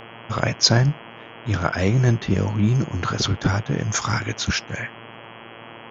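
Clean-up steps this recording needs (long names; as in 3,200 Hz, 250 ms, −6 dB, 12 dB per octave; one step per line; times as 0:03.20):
hum removal 114.2 Hz, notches 29
noise reduction from a noise print 25 dB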